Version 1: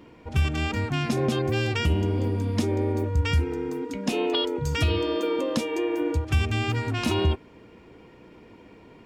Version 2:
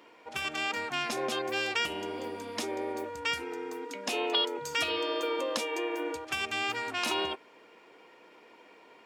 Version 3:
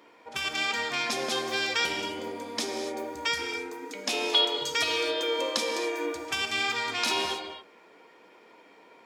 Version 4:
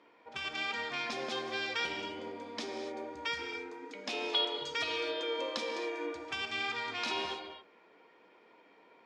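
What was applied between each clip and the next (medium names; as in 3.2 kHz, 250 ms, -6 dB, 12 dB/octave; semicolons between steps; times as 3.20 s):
high-pass 590 Hz 12 dB/octave
dynamic bell 4.6 kHz, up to +7 dB, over -47 dBFS, Q 0.75; band-stop 2.8 kHz, Q 14; gated-style reverb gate 300 ms flat, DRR 4.5 dB
low-pass 4.3 kHz 12 dB/octave; trim -6.5 dB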